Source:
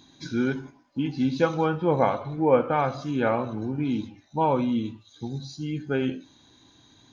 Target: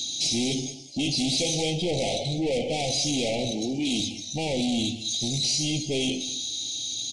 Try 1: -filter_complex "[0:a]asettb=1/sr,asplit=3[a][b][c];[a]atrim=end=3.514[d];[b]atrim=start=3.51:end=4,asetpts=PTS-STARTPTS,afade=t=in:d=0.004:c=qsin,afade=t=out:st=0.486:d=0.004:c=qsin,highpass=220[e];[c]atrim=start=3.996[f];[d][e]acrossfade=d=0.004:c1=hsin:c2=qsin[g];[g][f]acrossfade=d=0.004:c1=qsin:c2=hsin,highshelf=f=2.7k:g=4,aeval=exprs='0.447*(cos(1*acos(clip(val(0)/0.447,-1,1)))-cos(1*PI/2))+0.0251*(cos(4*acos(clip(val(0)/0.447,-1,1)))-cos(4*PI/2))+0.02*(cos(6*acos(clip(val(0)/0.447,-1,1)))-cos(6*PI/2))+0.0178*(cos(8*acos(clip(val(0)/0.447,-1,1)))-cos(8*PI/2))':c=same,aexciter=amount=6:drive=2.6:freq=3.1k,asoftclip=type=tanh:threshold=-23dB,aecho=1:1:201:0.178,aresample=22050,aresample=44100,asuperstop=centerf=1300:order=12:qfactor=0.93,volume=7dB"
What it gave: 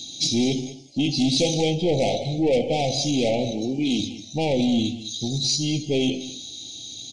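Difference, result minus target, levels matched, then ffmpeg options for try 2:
soft clip: distortion -5 dB; 4000 Hz band -3.0 dB
-filter_complex "[0:a]asettb=1/sr,asplit=3[a][b][c];[a]atrim=end=3.514[d];[b]atrim=start=3.51:end=4,asetpts=PTS-STARTPTS,afade=t=in:d=0.004:c=qsin,afade=t=out:st=0.486:d=0.004:c=qsin,highpass=220[e];[c]atrim=start=3.996[f];[d][e]acrossfade=d=0.004:c1=hsin:c2=qsin[g];[g][f]acrossfade=d=0.004:c1=qsin:c2=hsin,highshelf=f=2.7k:g=13.5,aeval=exprs='0.447*(cos(1*acos(clip(val(0)/0.447,-1,1)))-cos(1*PI/2))+0.0251*(cos(4*acos(clip(val(0)/0.447,-1,1)))-cos(4*PI/2))+0.02*(cos(6*acos(clip(val(0)/0.447,-1,1)))-cos(6*PI/2))+0.0178*(cos(8*acos(clip(val(0)/0.447,-1,1)))-cos(8*PI/2))':c=same,aexciter=amount=6:drive=2.6:freq=3.1k,asoftclip=type=tanh:threshold=-30.5dB,aecho=1:1:201:0.178,aresample=22050,aresample=44100,asuperstop=centerf=1300:order=12:qfactor=0.93,volume=7dB"

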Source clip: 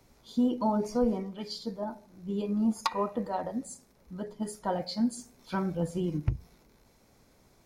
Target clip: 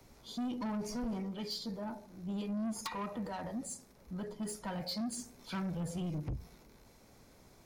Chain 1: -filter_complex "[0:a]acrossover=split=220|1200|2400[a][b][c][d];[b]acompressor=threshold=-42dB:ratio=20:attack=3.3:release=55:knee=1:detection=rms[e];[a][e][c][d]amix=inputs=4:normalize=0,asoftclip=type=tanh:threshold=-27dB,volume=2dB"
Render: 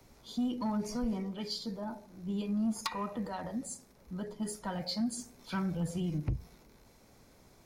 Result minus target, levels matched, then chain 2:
soft clip: distortion -6 dB
-filter_complex "[0:a]acrossover=split=220|1200|2400[a][b][c][d];[b]acompressor=threshold=-42dB:ratio=20:attack=3.3:release=55:knee=1:detection=rms[e];[a][e][c][d]amix=inputs=4:normalize=0,asoftclip=type=tanh:threshold=-35.5dB,volume=2dB"

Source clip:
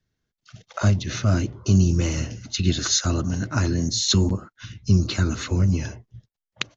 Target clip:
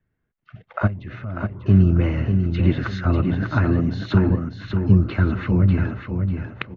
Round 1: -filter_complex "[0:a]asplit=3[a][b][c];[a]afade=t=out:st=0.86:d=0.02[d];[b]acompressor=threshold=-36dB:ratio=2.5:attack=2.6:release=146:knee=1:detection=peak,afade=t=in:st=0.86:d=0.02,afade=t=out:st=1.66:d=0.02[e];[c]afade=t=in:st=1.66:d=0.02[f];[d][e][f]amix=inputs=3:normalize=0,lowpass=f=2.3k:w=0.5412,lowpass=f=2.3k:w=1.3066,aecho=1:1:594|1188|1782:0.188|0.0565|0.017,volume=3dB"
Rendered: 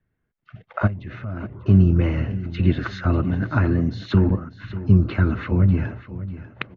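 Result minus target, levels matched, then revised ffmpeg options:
echo-to-direct -8.5 dB
-filter_complex "[0:a]asplit=3[a][b][c];[a]afade=t=out:st=0.86:d=0.02[d];[b]acompressor=threshold=-36dB:ratio=2.5:attack=2.6:release=146:knee=1:detection=peak,afade=t=in:st=0.86:d=0.02,afade=t=out:st=1.66:d=0.02[e];[c]afade=t=in:st=1.66:d=0.02[f];[d][e][f]amix=inputs=3:normalize=0,lowpass=f=2.3k:w=0.5412,lowpass=f=2.3k:w=1.3066,aecho=1:1:594|1188|1782|2376:0.501|0.15|0.0451|0.0135,volume=3dB"

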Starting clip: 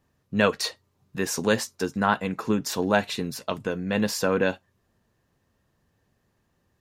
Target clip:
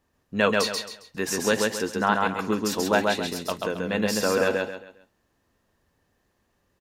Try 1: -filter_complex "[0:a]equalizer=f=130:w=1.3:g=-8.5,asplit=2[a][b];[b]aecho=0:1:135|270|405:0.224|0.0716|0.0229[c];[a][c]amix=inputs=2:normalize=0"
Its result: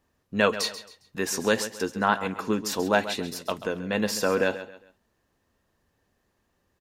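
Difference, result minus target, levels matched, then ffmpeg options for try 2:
echo-to-direct -10.5 dB
-filter_complex "[0:a]equalizer=f=130:w=1.3:g=-8.5,asplit=2[a][b];[b]aecho=0:1:135|270|405|540:0.75|0.24|0.0768|0.0246[c];[a][c]amix=inputs=2:normalize=0"

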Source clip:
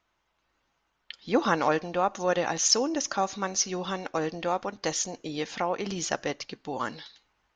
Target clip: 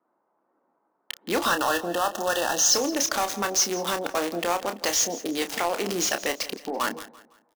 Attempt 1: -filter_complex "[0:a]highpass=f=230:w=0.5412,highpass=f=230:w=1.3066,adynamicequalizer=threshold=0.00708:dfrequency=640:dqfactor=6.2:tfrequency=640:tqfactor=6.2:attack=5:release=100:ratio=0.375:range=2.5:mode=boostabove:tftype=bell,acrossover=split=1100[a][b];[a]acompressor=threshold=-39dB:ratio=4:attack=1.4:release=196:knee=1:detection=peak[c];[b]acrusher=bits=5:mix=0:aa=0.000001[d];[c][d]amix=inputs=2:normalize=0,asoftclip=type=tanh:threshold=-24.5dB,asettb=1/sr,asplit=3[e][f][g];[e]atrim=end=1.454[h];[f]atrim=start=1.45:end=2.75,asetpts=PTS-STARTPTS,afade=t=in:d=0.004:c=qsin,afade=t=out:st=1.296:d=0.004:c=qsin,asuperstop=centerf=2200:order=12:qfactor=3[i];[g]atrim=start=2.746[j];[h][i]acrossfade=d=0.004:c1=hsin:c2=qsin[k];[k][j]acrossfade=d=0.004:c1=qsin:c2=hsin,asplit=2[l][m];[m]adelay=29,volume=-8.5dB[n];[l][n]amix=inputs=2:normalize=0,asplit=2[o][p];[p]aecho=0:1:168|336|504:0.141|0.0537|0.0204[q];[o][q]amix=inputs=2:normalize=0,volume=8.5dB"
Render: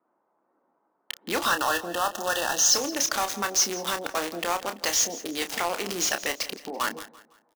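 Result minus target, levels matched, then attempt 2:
compressor: peak gain reduction +5 dB
-filter_complex "[0:a]highpass=f=230:w=0.5412,highpass=f=230:w=1.3066,adynamicequalizer=threshold=0.00708:dfrequency=640:dqfactor=6.2:tfrequency=640:tqfactor=6.2:attack=5:release=100:ratio=0.375:range=2.5:mode=boostabove:tftype=bell,acrossover=split=1100[a][b];[a]acompressor=threshold=-32dB:ratio=4:attack=1.4:release=196:knee=1:detection=peak[c];[b]acrusher=bits=5:mix=0:aa=0.000001[d];[c][d]amix=inputs=2:normalize=0,asoftclip=type=tanh:threshold=-24.5dB,asettb=1/sr,asplit=3[e][f][g];[e]atrim=end=1.454[h];[f]atrim=start=1.45:end=2.75,asetpts=PTS-STARTPTS,afade=t=in:d=0.004:c=qsin,afade=t=out:st=1.296:d=0.004:c=qsin,asuperstop=centerf=2200:order=12:qfactor=3[i];[g]atrim=start=2.746[j];[h][i]acrossfade=d=0.004:c1=hsin:c2=qsin[k];[k][j]acrossfade=d=0.004:c1=qsin:c2=hsin,asplit=2[l][m];[m]adelay=29,volume=-8.5dB[n];[l][n]amix=inputs=2:normalize=0,asplit=2[o][p];[p]aecho=0:1:168|336|504:0.141|0.0537|0.0204[q];[o][q]amix=inputs=2:normalize=0,volume=8.5dB"

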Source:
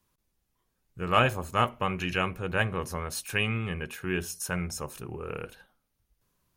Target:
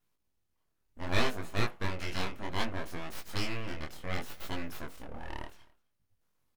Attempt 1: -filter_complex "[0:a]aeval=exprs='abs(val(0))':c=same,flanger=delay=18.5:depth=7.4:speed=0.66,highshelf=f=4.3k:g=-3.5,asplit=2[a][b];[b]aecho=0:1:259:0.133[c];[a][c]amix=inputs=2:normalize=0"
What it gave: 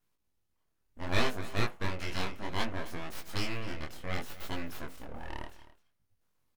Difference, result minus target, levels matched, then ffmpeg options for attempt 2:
echo-to-direct +8.5 dB
-filter_complex "[0:a]aeval=exprs='abs(val(0))':c=same,flanger=delay=18.5:depth=7.4:speed=0.66,highshelf=f=4.3k:g=-3.5,asplit=2[a][b];[b]aecho=0:1:259:0.0501[c];[a][c]amix=inputs=2:normalize=0"

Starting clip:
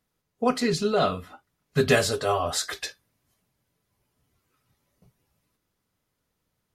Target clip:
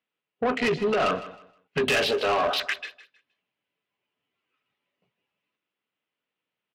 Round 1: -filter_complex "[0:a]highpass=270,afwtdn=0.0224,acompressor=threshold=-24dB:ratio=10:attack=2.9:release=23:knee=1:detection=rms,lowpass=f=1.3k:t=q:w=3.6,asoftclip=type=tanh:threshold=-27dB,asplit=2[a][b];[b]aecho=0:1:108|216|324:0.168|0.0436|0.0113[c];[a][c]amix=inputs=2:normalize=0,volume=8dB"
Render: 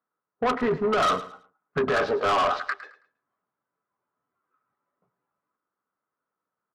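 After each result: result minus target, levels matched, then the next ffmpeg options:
echo 49 ms early; 1000 Hz band +3.0 dB
-filter_complex "[0:a]highpass=270,afwtdn=0.0224,acompressor=threshold=-24dB:ratio=10:attack=2.9:release=23:knee=1:detection=rms,lowpass=f=1.3k:t=q:w=3.6,asoftclip=type=tanh:threshold=-27dB,asplit=2[a][b];[b]aecho=0:1:157|314|471:0.168|0.0436|0.0113[c];[a][c]amix=inputs=2:normalize=0,volume=8dB"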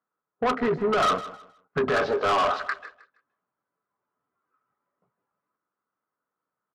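1000 Hz band +3.0 dB
-filter_complex "[0:a]highpass=270,afwtdn=0.0224,acompressor=threshold=-24dB:ratio=10:attack=2.9:release=23:knee=1:detection=rms,lowpass=f=2.8k:t=q:w=3.6,asoftclip=type=tanh:threshold=-27dB,asplit=2[a][b];[b]aecho=0:1:157|314|471:0.168|0.0436|0.0113[c];[a][c]amix=inputs=2:normalize=0,volume=8dB"

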